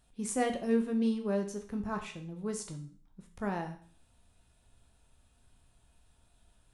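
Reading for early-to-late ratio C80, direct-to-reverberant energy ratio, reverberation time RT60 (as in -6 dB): 14.5 dB, 4.5 dB, 0.50 s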